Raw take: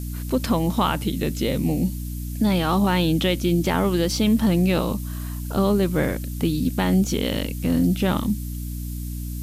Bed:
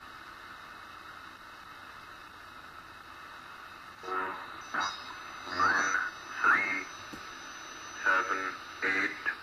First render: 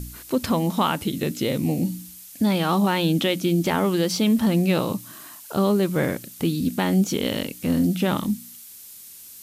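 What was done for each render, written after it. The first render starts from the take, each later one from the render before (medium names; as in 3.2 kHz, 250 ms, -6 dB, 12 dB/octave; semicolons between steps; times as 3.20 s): de-hum 60 Hz, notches 5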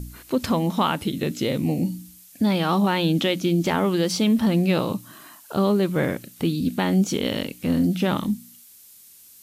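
noise print and reduce 6 dB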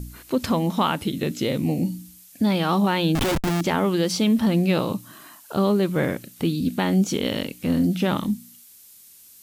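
3.15–3.61 s: Schmitt trigger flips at -25 dBFS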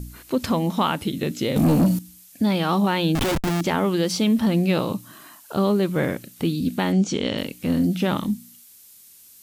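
1.56–1.99 s: waveshaping leveller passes 3; 6.92–7.38 s: low-pass 7.6 kHz 24 dB/octave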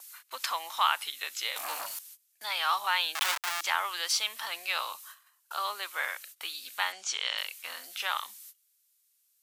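gate -41 dBFS, range -22 dB; high-pass 1 kHz 24 dB/octave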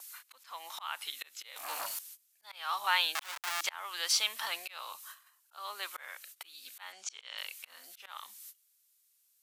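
slow attack 421 ms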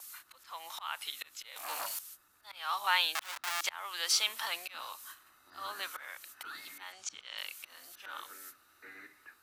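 add bed -22 dB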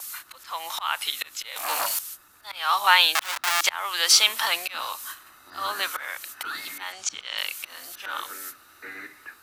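trim +12 dB; peak limiter -3 dBFS, peak gain reduction 1.5 dB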